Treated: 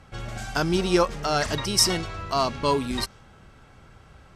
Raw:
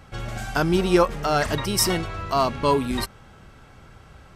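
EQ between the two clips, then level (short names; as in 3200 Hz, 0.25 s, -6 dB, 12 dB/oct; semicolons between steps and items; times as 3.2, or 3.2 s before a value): LPF 12000 Hz 12 dB/oct; dynamic EQ 5500 Hz, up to +7 dB, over -45 dBFS, Q 0.94; -3.0 dB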